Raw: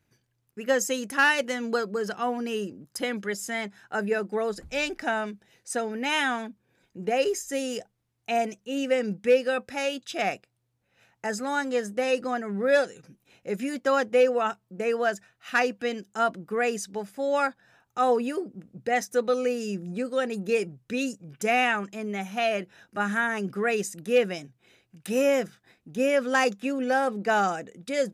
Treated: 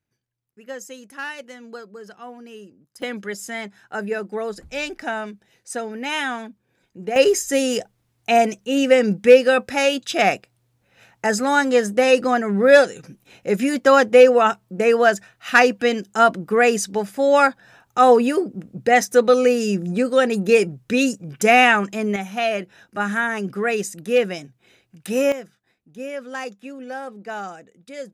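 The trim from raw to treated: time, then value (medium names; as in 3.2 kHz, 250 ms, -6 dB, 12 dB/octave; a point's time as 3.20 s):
-10 dB
from 3.02 s +1 dB
from 7.16 s +10 dB
from 22.16 s +4 dB
from 25.32 s -7.5 dB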